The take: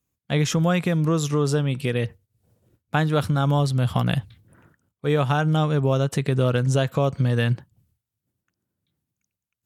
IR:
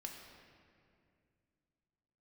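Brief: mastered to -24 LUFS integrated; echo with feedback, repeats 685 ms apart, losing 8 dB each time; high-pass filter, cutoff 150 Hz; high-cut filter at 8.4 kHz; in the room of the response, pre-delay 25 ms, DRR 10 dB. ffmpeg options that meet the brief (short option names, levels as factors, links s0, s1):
-filter_complex "[0:a]highpass=150,lowpass=8400,aecho=1:1:685|1370|2055|2740|3425:0.398|0.159|0.0637|0.0255|0.0102,asplit=2[s0][s1];[1:a]atrim=start_sample=2205,adelay=25[s2];[s1][s2]afir=irnorm=-1:irlink=0,volume=0.447[s3];[s0][s3]amix=inputs=2:normalize=0,volume=1.06"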